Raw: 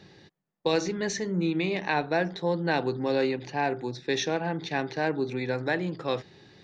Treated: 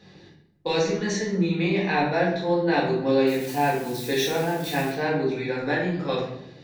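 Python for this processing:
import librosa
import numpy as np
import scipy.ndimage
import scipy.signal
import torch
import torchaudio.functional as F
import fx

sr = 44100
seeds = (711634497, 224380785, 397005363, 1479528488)

y = fx.crossing_spikes(x, sr, level_db=-30.5, at=(3.27, 4.9))
y = fx.room_shoebox(y, sr, seeds[0], volume_m3=180.0, walls='mixed', distance_m=1.9)
y = y * 10.0 ** (-3.5 / 20.0)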